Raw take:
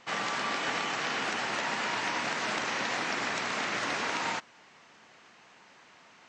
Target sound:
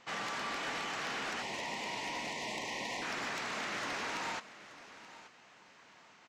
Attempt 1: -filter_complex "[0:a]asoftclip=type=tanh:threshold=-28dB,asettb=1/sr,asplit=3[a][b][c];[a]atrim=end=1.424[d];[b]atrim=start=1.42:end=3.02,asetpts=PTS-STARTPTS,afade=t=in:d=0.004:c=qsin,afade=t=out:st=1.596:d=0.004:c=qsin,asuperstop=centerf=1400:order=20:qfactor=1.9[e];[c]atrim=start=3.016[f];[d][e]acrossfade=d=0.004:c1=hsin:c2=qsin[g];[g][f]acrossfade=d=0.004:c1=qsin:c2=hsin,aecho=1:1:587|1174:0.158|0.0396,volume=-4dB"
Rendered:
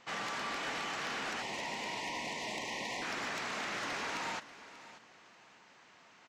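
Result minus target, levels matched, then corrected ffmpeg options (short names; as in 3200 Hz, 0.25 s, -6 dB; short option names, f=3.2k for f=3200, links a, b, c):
echo 0.292 s early
-filter_complex "[0:a]asoftclip=type=tanh:threshold=-28dB,asettb=1/sr,asplit=3[a][b][c];[a]atrim=end=1.424[d];[b]atrim=start=1.42:end=3.02,asetpts=PTS-STARTPTS,afade=t=in:d=0.004:c=qsin,afade=t=out:st=1.596:d=0.004:c=qsin,asuperstop=centerf=1400:order=20:qfactor=1.9[e];[c]atrim=start=3.016[f];[d][e]acrossfade=d=0.004:c1=hsin:c2=qsin[g];[g][f]acrossfade=d=0.004:c1=qsin:c2=hsin,aecho=1:1:879|1758:0.158|0.0396,volume=-4dB"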